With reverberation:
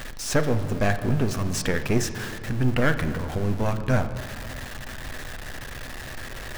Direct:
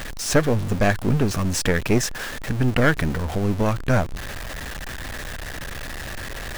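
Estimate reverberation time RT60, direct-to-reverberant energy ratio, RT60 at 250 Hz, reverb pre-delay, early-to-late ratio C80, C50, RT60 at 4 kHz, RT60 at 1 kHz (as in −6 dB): 2.5 s, 7.5 dB, 3.1 s, 8 ms, 12.0 dB, 11.0 dB, 1.3 s, 2.3 s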